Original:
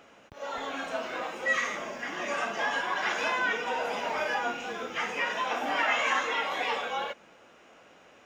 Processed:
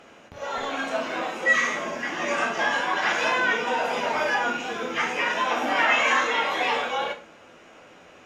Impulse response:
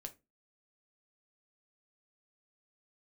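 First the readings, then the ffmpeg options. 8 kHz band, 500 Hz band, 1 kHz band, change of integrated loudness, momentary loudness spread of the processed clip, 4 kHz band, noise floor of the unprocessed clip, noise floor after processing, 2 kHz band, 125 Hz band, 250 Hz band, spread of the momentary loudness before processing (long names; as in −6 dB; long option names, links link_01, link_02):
+6.0 dB, +5.5 dB, +5.5 dB, +6.0 dB, 9 LU, +5.5 dB, −57 dBFS, −50 dBFS, +6.0 dB, +7.5 dB, +7.5 dB, 9 LU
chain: -filter_complex "[1:a]atrim=start_sample=2205,asetrate=25578,aresample=44100[link_01];[0:a][link_01]afir=irnorm=-1:irlink=0,volume=7.5dB"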